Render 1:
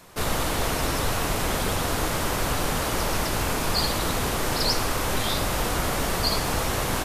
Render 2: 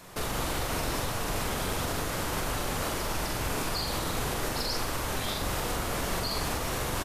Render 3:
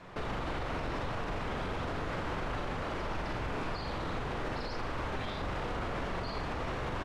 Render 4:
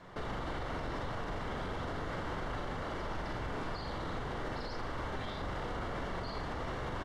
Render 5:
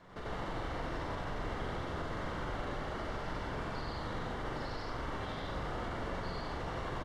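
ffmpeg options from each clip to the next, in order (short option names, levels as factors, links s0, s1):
-filter_complex "[0:a]alimiter=limit=0.075:level=0:latency=1:release=208,asplit=2[s0][s1];[s1]adelay=44,volume=0.631[s2];[s0][s2]amix=inputs=2:normalize=0"
-af "alimiter=level_in=1.19:limit=0.0631:level=0:latency=1:release=35,volume=0.841,lowpass=2600"
-af "bandreject=f=2500:w=6.9,volume=0.75"
-af "aecho=1:1:93.29|166.2:1|0.794,volume=0.596"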